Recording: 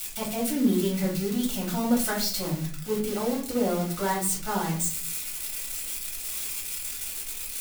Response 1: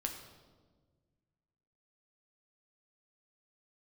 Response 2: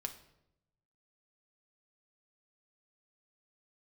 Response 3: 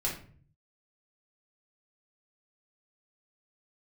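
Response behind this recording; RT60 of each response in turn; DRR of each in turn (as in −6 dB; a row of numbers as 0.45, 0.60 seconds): 3; 1.5, 0.85, 0.45 seconds; 2.5, 5.5, −4.5 decibels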